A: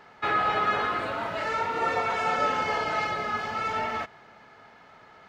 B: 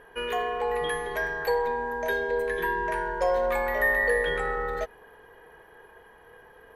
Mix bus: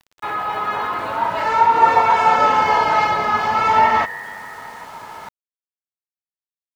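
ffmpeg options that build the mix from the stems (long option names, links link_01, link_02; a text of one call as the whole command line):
ffmpeg -i stem1.wav -i stem2.wav -filter_complex "[0:a]equalizer=frequency=950:width_type=o:width=0.35:gain=13.5,volume=-2.5dB[link_01];[1:a]bandpass=frequency=1800:width_type=q:width=3.6:csg=0,volume=-16dB[link_02];[link_01][link_02]amix=inputs=2:normalize=0,dynaudnorm=framelen=460:gausssize=5:maxgain=17dB,aeval=exprs='val(0)*gte(abs(val(0)),0.00944)':channel_layout=same" out.wav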